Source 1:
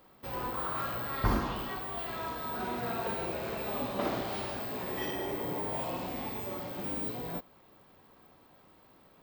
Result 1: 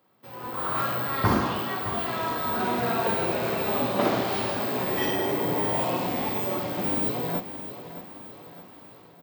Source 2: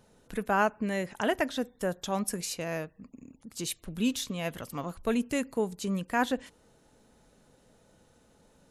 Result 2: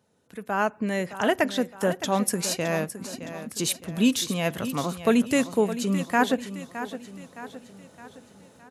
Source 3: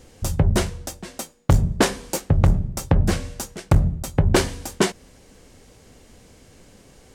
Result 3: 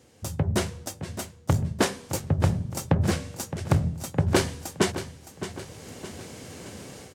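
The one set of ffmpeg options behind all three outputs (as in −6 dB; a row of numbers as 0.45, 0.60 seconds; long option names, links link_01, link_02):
-filter_complex "[0:a]highpass=frequency=80:width=0.5412,highpass=frequency=80:width=1.3066,dynaudnorm=framelen=390:gausssize=3:maxgain=16dB,asplit=2[link_01][link_02];[link_02]aecho=0:1:615|1230|1845|2460|3075:0.251|0.121|0.0579|0.0278|0.0133[link_03];[link_01][link_03]amix=inputs=2:normalize=0,volume=-7dB"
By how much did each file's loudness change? +8.5, +5.5, −5.5 LU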